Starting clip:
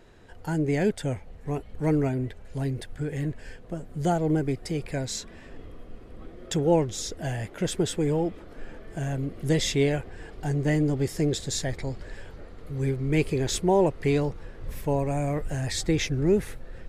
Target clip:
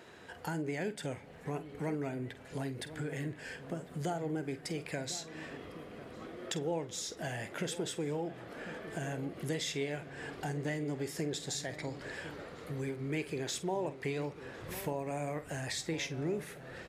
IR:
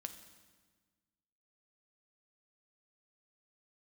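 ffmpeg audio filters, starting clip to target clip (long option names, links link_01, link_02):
-filter_complex "[0:a]highpass=130,tiltshelf=frequency=670:gain=-4,acompressor=threshold=-40dB:ratio=3,asplit=2[link_01][link_02];[link_02]adelay=48,volume=-13.5dB[link_03];[link_01][link_03]amix=inputs=2:normalize=0,asplit=2[link_04][link_05];[link_05]adelay=1050,volume=-13dB,highshelf=frequency=4000:gain=-23.6[link_06];[link_04][link_06]amix=inputs=2:normalize=0,asplit=2[link_07][link_08];[1:a]atrim=start_sample=2205,asetrate=37044,aresample=44100,lowpass=3900[link_09];[link_08][link_09]afir=irnorm=-1:irlink=0,volume=-6.5dB[link_10];[link_07][link_10]amix=inputs=2:normalize=0"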